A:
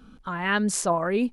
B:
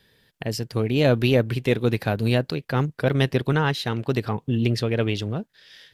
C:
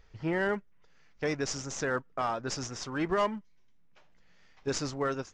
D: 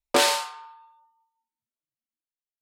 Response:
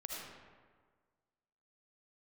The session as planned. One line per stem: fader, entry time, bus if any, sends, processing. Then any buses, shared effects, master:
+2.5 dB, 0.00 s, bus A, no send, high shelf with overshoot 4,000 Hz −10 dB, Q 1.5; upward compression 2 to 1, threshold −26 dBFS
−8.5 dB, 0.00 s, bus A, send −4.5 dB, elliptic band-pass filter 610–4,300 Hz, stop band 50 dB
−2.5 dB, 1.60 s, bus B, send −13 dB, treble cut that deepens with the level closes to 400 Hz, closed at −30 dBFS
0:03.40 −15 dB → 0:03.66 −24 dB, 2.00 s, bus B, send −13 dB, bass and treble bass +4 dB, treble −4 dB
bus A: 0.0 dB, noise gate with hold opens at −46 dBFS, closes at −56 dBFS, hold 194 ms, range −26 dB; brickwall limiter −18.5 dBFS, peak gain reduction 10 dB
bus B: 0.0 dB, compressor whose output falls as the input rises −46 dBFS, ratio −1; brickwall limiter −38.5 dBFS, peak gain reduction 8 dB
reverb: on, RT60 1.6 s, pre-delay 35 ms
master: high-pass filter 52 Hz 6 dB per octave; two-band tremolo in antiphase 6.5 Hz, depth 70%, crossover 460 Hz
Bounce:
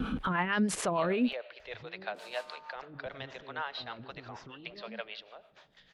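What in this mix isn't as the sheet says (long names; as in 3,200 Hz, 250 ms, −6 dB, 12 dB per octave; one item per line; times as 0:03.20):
stem A +2.5 dB → +10.5 dB
stem D −15.0 dB → −6.5 dB
reverb return −9.5 dB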